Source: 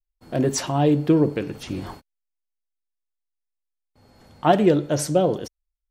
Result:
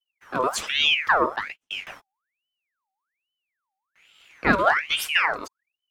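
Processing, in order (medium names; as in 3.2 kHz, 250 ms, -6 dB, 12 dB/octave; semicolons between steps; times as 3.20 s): 1.36–1.87 s: gate -29 dBFS, range -45 dB; ring modulator with a swept carrier 1.9 kHz, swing 60%, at 1.2 Hz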